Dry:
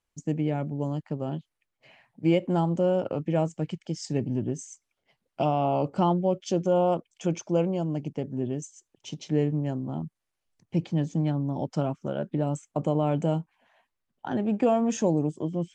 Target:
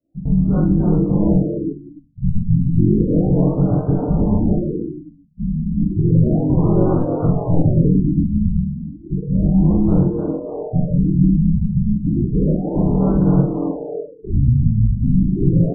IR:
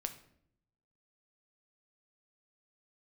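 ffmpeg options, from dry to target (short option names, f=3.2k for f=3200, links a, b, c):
-filter_complex "[0:a]adynamicequalizer=threshold=0.00891:dfrequency=150:dqfactor=1.3:tfrequency=150:tqfactor=1.3:attack=5:release=100:ratio=0.375:range=2.5:mode=boostabove:tftype=bell,alimiter=limit=-22.5dB:level=0:latency=1:release=15,acontrast=76,asplit=4[a][b][c][d];[b]asetrate=22050,aresample=44100,atempo=2,volume=-18dB[e];[c]asetrate=55563,aresample=44100,atempo=0.793701,volume=-3dB[f];[d]asetrate=58866,aresample=44100,atempo=0.749154,volume=-16dB[g];[a][e][f][g]amix=inputs=4:normalize=0,afreqshift=-340,asplit=7[h][i][j][k][l][m][n];[i]adelay=298,afreqshift=140,volume=-8dB[o];[j]adelay=596,afreqshift=280,volume=-13.4dB[p];[k]adelay=894,afreqshift=420,volume=-18.7dB[q];[l]adelay=1192,afreqshift=560,volume=-24.1dB[r];[m]adelay=1490,afreqshift=700,volume=-29.4dB[s];[n]adelay=1788,afreqshift=840,volume=-34.8dB[t];[h][o][p][q][r][s][t]amix=inputs=7:normalize=0,asplit=2[u][v];[1:a]atrim=start_sample=2205,adelay=43[w];[v][w]afir=irnorm=-1:irlink=0,volume=-2.5dB[x];[u][x]amix=inputs=2:normalize=0,afftfilt=real='re*lt(b*sr/1024,240*pow(1600/240,0.5+0.5*sin(2*PI*0.32*pts/sr)))':imag='im*lt(b*sr/1024,240*pow(1600/240,0.5+0.5*sin(2*PI*0.32*pts/sr)))':win_size=1024:overlap=0.75,volume=4dB"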